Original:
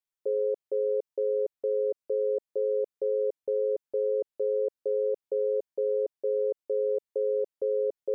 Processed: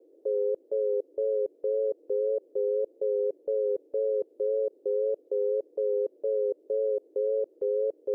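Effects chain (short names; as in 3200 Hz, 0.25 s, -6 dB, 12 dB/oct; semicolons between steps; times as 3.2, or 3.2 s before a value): vibrato 1.8 Hz 54 cents; band noise 300–530 Hz -59 dBFS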